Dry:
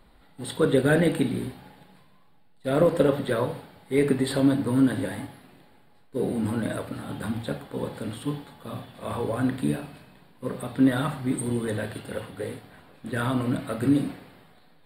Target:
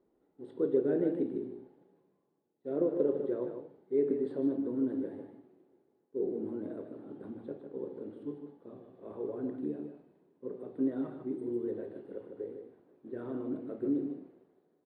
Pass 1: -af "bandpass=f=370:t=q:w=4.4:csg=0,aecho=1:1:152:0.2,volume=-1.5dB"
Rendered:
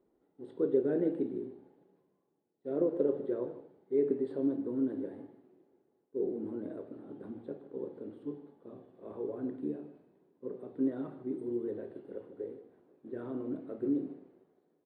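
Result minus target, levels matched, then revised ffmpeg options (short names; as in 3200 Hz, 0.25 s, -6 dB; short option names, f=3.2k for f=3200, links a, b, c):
echo-to-direct -7 dB
-af "bandpass=f=370:t=q:w=4.4:csg=0,aecho=1:1:152:0.447,volume=-1.5dB"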